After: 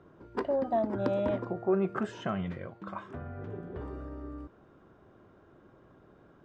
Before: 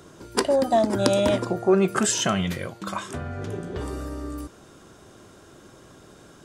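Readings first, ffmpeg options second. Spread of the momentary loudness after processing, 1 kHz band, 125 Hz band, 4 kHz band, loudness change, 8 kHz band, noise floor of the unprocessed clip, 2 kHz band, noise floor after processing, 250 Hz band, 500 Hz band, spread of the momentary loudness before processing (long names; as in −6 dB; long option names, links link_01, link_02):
14 LU, −9.0 dB, −8.5 dB, −22.0 dB, −9.5 dB, below −30 dB, −51 dBFS, −12.0 dB, −60 dBFS, −8.5 dB, −8.5 dB, 13 LU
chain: -af "lowpass=1600,volume=-8.5dB"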